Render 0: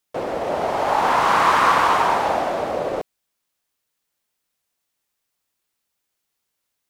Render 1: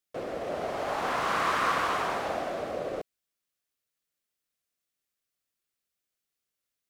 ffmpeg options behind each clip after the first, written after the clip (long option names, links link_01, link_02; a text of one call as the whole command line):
ffmpeg -i in.wav -af "equalizer=frequency=900:width=4.4:gain=-10,volume=-8.5dB" out.wav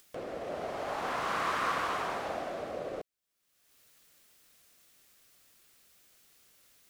ffmpeg -i in.wav -af "acompressor=mode=upward:threshold=-37dB:ratio=2.5,volume=-4.5dB" out.wav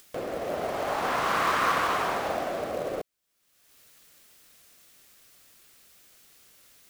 ffmpeg -i in.wav -af "acrusher=bits=5:mode=log:mix=0:aa=0.000001,volume=6.5dB" out.wav